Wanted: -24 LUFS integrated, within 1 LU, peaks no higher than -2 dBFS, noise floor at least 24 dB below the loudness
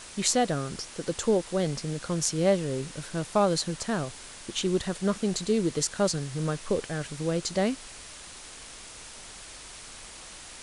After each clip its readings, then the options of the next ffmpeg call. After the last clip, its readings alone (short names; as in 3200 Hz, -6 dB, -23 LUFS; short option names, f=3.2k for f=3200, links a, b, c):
noise floor -45 dBFS; noise floor target -53 dBFS; loudness -28.5 LUFS; peak -7.0 dBFS; loudness target -24.0 LUFS
-> -af "afftdn=nr=8:nf=-45"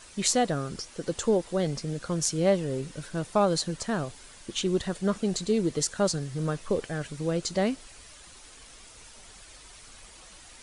noise floor -50 dBFS; noise floor target -53 dBFS
-> -af "afftdn=nr=6:nf=-50"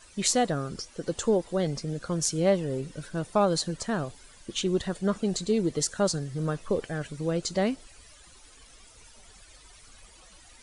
noise floor -54 dBFS; loudness -28.5 LUFS; peak -7.0 dBFS; loudness target -24.0 LUFS
-> -af "volume=4.5dB"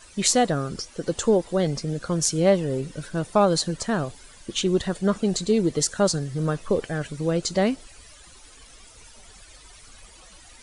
loudness -24.0 LUFS; peak -2.5 dBFS; noise floor -49 dBFS